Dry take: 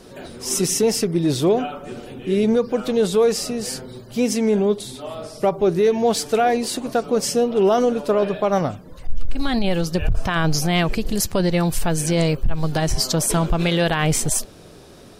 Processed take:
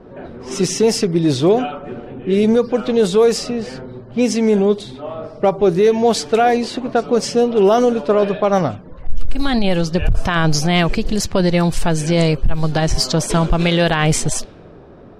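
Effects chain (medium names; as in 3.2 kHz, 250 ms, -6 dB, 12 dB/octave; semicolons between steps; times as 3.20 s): level-controlled noise filter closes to 1.2 kHz, open at -12.5 dBFS; trim +4 dB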